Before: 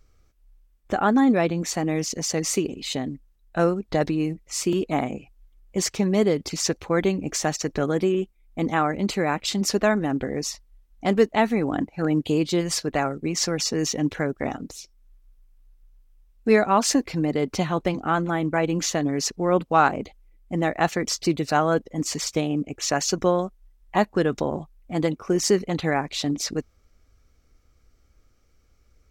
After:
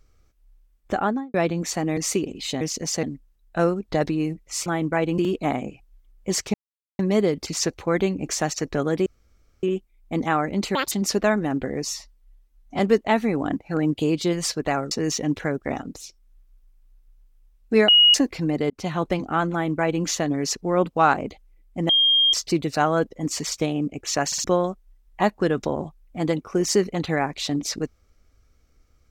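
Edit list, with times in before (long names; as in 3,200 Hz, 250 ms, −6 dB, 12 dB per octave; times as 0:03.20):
0:00.95–0:01.34: fade out and dull
0:01.97–0:02.39: move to 0:03.03
0:06.02: splice in silence 0.45 s
0:08.09: splice in room tone 0.57 s
0:09.21–0:09.51: play speed 180%
0:10.44–0:11.07: time-stretch 1.5×
0:13.19–0:13.66: remove
0:16.63–0:16.89: beep over 2,890 Hz −10.5 dBFS
0:17.45–0:17.70: fade in
0:18.27–0:18.79: duplicate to 0:04.66
0:20.64–0:21.08: beep over 3,220 Hz −14.5 dBFS
0:23.01: stutter in place 0.06 s, 3 plays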